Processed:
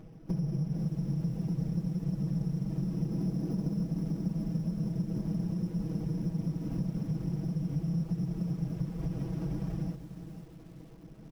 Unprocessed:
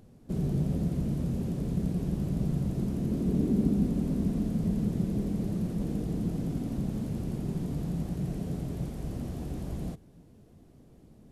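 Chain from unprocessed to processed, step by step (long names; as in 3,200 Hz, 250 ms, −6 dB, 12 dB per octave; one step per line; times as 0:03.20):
lower of the sound and its delayed copy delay 0.37 ms
dynamic equaliser 160 Hz, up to +7 dB, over −44 dBFS, Q 2.4
reverb reduction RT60 0.58 s
in parallel at −4.5 dB: gain into a clipping stage and back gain 25.5 dB
on the sum: bad sample-rate conversion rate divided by 8×, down none, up hold
high-shelf EQ 2,900 Hz −10 dB
comb filter 6.2 ms, depth 88%
downward compressor 5 to 1, threshold −31 dBFS, peak gain reduction 16 dB
on a send at −20 dB: convolution reverb RT60 3.0 s, pre-delay 80 ms
on the sum: feedback echo at a low word length 490 ms, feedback 35%, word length 9 bits, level −11 dB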